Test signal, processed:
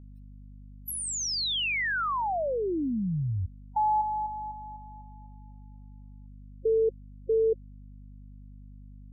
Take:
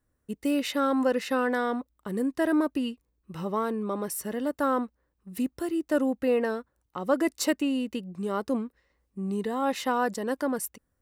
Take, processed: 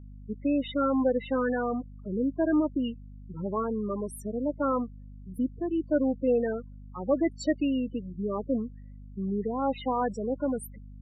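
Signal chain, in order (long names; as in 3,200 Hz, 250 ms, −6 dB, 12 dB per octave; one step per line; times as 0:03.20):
spectral peaks only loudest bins 8
mains hum 50 Hz, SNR 16 dB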